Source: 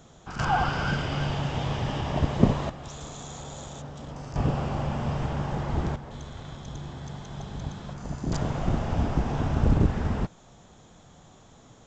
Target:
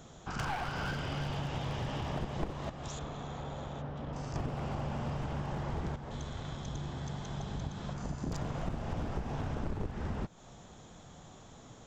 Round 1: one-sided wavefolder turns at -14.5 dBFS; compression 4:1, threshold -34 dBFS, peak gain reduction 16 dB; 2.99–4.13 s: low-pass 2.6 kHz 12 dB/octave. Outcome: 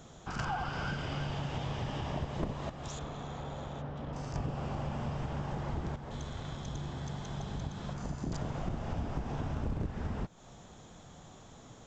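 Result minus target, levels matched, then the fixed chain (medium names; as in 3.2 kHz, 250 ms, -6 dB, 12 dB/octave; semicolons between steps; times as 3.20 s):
one-sided wavefolder: distortion -9 dB
one-sided wavefolder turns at -23.5 dBFS; compression 4:1, threshold -34 dBFS, peak gain reduction 17 dB; 2.99–4.13 s: low-pass 2.6 kHz 12 dB/octave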